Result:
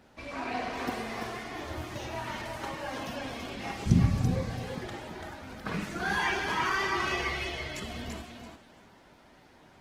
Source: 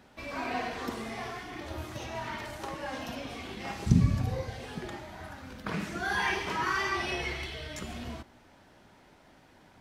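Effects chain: thinning echo 336 ms, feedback 20%, high-pass 170 Hz, level -4.5 dB; Opus 16 kbps 48 kHz

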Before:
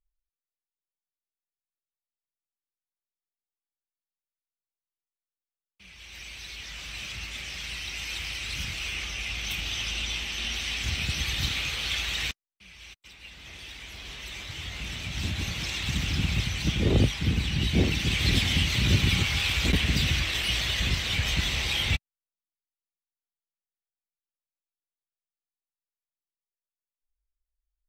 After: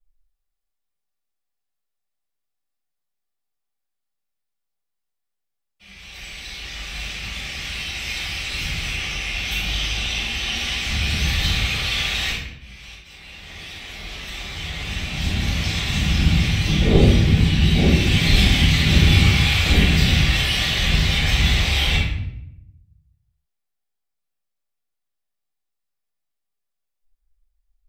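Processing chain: simulated room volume 220 m³, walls mixed, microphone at 6.6 m; trim -8.5 dB

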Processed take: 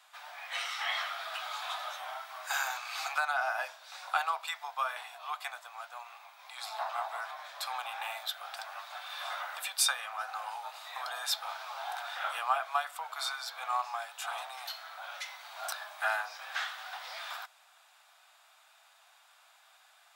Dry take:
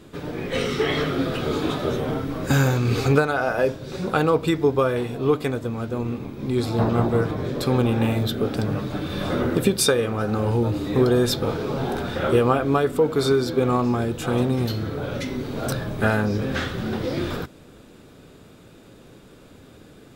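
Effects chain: steep high-pass 690 Hz 72 dB/octave; trim -5.5 dB

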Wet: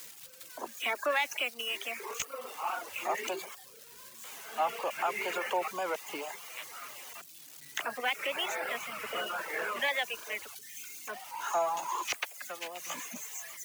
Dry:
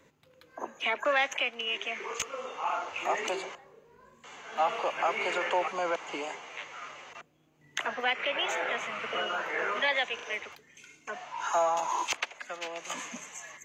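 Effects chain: zero-crossing glitches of -33.5 dBFS; reverb removal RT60 0.6 s; warped record 78 rpm, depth 100 cents; trim -2.5 dB

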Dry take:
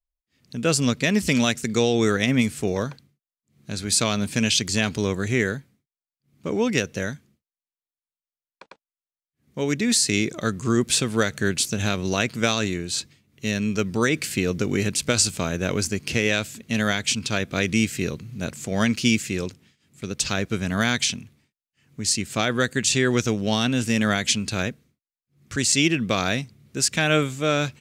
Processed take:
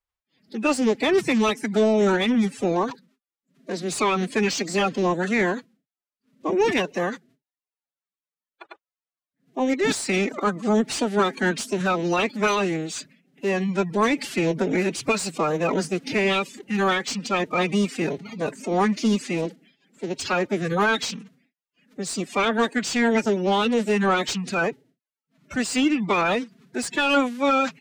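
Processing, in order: coarse spectral quantiser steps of 30 dB; formant-preserving pitch shift +10.5 st; overdrive pedal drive 16 dB, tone 1.2 kHz, clips at -7.5 dBFS

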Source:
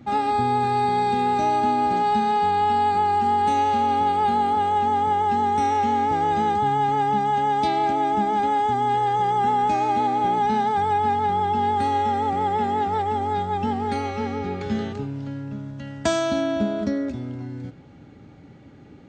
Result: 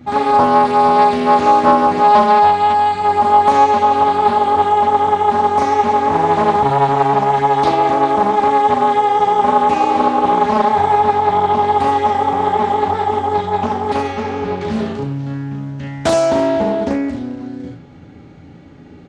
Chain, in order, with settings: 2.41–3.03 s: peaking EQ 540 Hz -1.5 dB -> -9.5 dB 2.4 oct; early reflections 12 ms -6 dB, 36 ms -3.5 dB, 71 ms -5 dB; loudspeaker Doppler distortion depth 0.4 ms; trim +4 dB

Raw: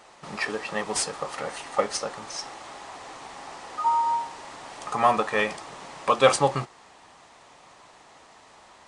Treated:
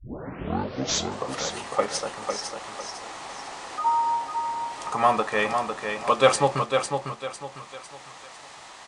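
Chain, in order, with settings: tape start-up on the opening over 1.32 s; feedback delay 502 ms, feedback 31%, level -6 dB; tape noise reduction on one side only encoder only

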